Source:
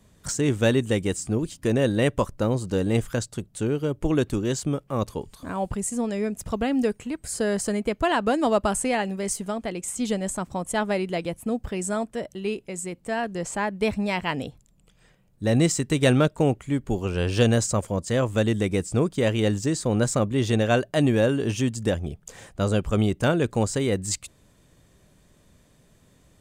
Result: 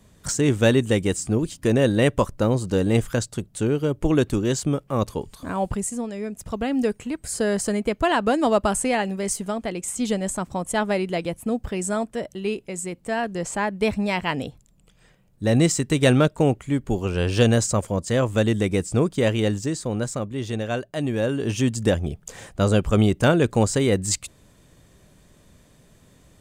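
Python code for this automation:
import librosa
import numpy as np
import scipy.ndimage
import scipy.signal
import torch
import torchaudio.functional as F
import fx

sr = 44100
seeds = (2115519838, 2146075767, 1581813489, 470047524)

y = fx.gain(x, sr, db=fx.line((5.75, 3.0), (6.12, -4.5), (6.98, 2.0), (19.26, 2.0), (20.23, -5.5), (21.02, -5.5), (21.73, 4.0)))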